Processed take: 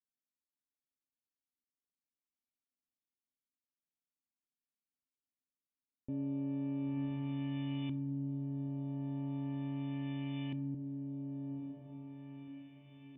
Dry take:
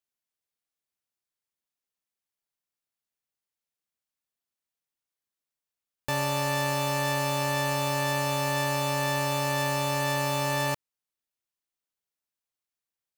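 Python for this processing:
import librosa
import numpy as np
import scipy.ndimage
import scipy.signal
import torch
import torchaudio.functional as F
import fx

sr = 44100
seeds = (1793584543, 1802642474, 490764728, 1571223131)

y = fx.formant_cascade(x, sr, vowel='i')
y = fx.echo_diffused(y, sr, ms=998, feedback_pct=46, wet_db=-3.5)
y = fx.filter_lfo_lowpass(y, sr, shape='saw_up', hz=0.38, low_hz=280.0, high_hz=2700.0, q=1.0)
y = fx.rev_plate(y, sr, seeds[0], rt60_s=0.86, hf_ratio=0.45, predelay_ms=0, drr_db=14.0)
y = y * librosa.db_to_amplitude(1.0)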